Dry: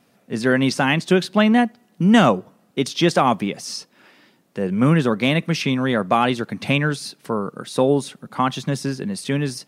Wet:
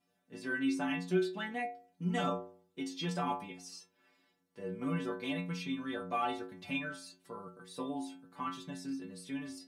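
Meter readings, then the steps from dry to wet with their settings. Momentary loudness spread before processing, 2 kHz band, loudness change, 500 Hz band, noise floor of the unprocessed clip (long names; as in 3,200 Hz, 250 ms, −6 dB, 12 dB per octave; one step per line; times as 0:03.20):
11 LU, −16.5 dB, −17.5 dB, −18.5 dB, −60 dBFS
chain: stiff-string resonator 87 Hz, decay 0.65 s, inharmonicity 0.008
level −6 dB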